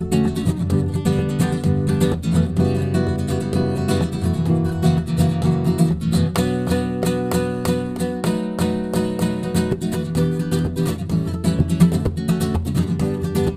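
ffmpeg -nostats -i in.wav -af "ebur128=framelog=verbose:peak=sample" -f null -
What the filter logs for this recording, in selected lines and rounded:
Integrated loudness:
  I:         -20.2 LUFS
  Threshold: -30.2 LUFS
Loudness range:
  LRA:         2.2 LU
  Threshold: -40.2 LUFS
  LRA low:   -21.5 LUFS
  LRA high:  -19.3 LUFS
Sample peak:
  Peak:       -3.2 dBFS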